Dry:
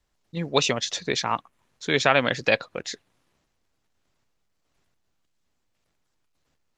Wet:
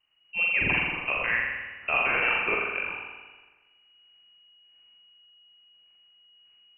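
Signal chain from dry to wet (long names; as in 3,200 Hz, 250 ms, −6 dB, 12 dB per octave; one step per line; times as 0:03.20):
brickwall limiter −13 dBFS, peak gain reduction 10.5 dB
spring reverb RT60 1.3 s, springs 41 ms, chirp 35 ms, DRR −2.5 dB
voice inversion scrambler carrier 2,900 Hz
level −2 dB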